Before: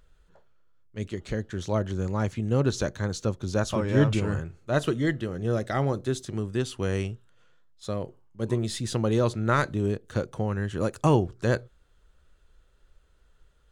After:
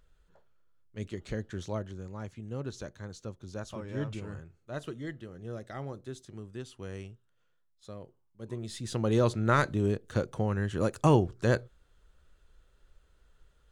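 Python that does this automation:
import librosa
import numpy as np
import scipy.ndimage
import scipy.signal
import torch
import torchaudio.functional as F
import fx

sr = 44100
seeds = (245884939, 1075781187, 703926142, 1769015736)

y = fx.gain(x, sr, db=fx.line((1.57, -5.0), (2.03, -13.5), (8.45, -13.5), (9.17, -1.5)))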